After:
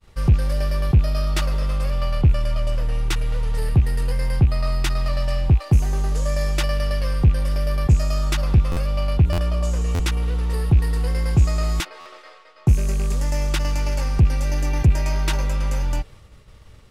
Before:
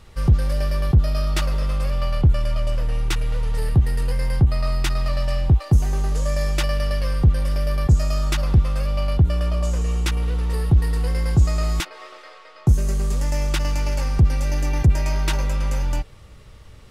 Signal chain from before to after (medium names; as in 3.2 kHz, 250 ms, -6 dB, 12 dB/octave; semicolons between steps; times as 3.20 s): rattle on loud lows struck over -15 dBFS, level -29 dBFS; expander -40 dBFS; buffer glitch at 8.71/9.32/9.94/12.00 s, times 4